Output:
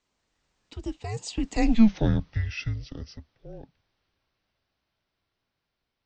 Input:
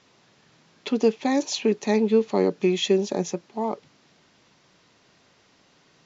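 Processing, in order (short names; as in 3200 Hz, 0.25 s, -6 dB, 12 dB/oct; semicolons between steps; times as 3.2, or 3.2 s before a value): Doppler pass-by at 1.82, 58 m/s, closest 9.9 m; frequency shift -220 Hz; gain +3.5 dB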